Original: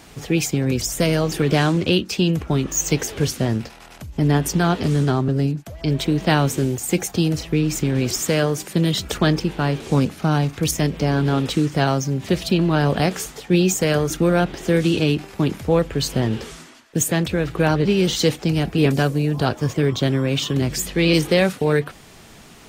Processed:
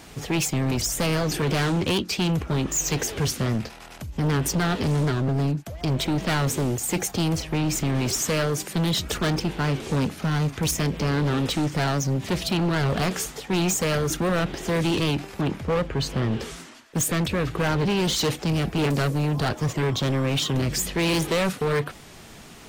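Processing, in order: 15.41–16.40 s: low-pass 2.8 kHz 6 dB/octave; hard clipper -20 dBFS, distortion -7 dB; warped record 78 rpm, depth 100 cents

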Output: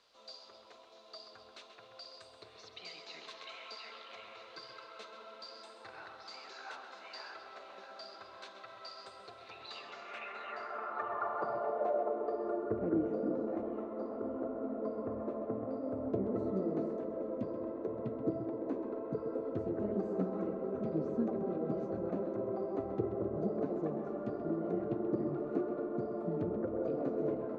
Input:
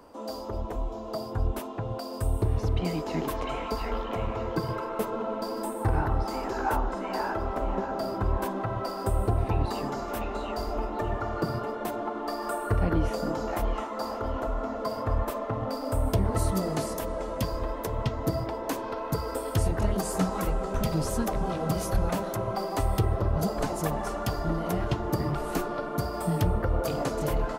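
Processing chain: cabinet simulation 150–5800 Hz, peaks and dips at 170 Hz -6 dB, 290 Hz -9 dB, 900 Hz -9 dB, 1.8 kHz -3 dB, 3.1 kHz -8 dB, 5.1 kHz -9 dB; added noise brown -50 dBFS; on a send: tape echo 131 ms, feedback 66%, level -8 dB, low-pass 4.5 kHz; on the sum: band-pass sweep 4.1 kHz -> 300 Hz, 9.53–12.80 s; trim +4.5 dB

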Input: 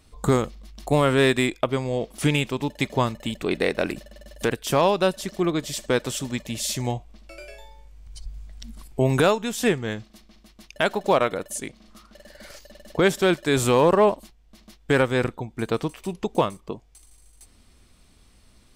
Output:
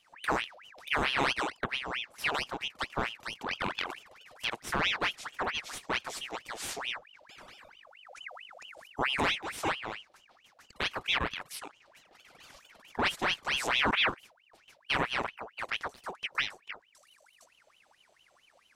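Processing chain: formant shift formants -3 st; ring modulator with a swept carrier 1.8 kHz, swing 70%, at 4.5 Hz; trim -7.5 dB

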